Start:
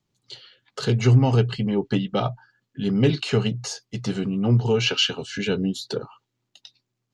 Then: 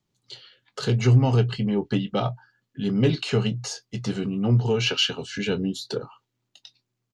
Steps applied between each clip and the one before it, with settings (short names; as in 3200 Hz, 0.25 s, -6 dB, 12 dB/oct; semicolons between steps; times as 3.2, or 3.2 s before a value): in parallel at -8.5 dB: soft clip -14.5 dBFS, distortion -14 dB; on the sum: doubler 24 ms -14 dB; gain -4 dB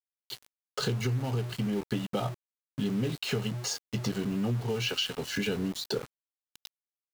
compressor 16:1, threshold -28 dBFS, peak gain reduction 16.5 dB; sample gate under -39.5 dBFS; gain +1.5 dB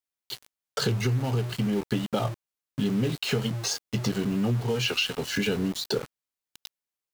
record warp 45 rpm, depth 100 cents; gain +4 dB